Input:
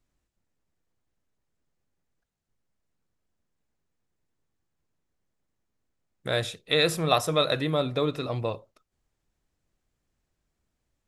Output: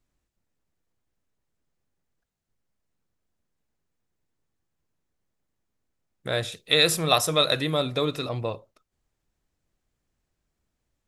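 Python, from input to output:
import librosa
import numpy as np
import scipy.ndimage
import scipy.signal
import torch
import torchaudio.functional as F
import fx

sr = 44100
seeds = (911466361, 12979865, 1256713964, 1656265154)

y = fx.high_shelf(x, sr, hz=3000.0, db=9.0, at=(6.52, 8.29))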